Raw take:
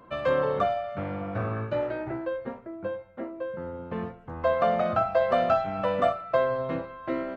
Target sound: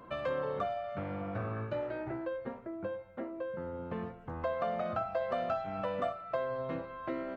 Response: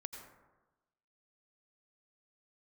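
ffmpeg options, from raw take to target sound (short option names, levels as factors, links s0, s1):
-af "acompressor=threshold=0.0112:ratio=2"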